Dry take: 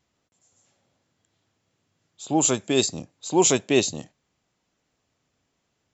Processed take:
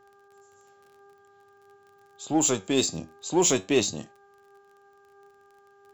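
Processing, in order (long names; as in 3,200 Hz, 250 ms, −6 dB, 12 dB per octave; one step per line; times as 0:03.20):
surface crackle 29 per second −45 dBFS
hum with harmonics 400 Hz, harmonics 4, −56 dBFS −4 dB per octave
in parallel at −7 dB: hard clipping −23 dBFS, distortion −5 dB
on the sum: flanger 0.48 Hz, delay 8.5 ms, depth 4.1 ms, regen +75%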